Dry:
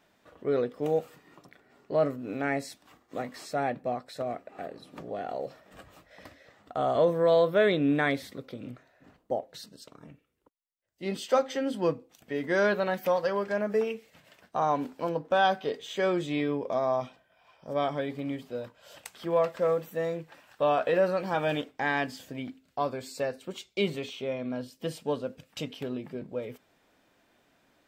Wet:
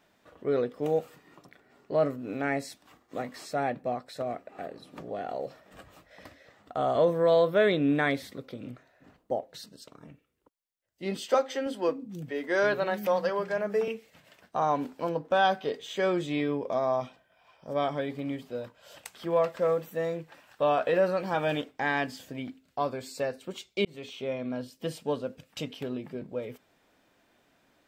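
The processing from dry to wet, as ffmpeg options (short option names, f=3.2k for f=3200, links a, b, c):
-filter_complex "[0:a]asettb=1/sr,asplit=3[a][b][c];[a]atrim=end=11.344[d];[b]atrim=start=11.34:end=13.88,asetpts=PTS-STARTPTS,afade=t=in:d=0.004:c=qsin,afade=t=out:st=2.536:d=0.004:c=qsin,acrossover=split=230[e][f];[e]adelay=320[g];[g][f]amix=inputs=2:normalize=0,atrim=end_sample=112014[h];[c]atrim=start=13.876[i];[d][h]acrossfade=d=0.004:c1=hsin:c2=qsin[j];[j][i]acrossfade=d=0.004:c1=qsin:c2=hsin,asplit=2[k][l];[k]atrim=end=23.85,asetpts=PTS-STARTPTS,afade=t=out:st=23.846:d=0.004:c=hsin[m];[l]atrim=start=23.85,asetpts=PTS-STARTPTS,afade=t=in:d=0.49:c=qsin[n];[m][n]concat=n=2:v=0:a=1"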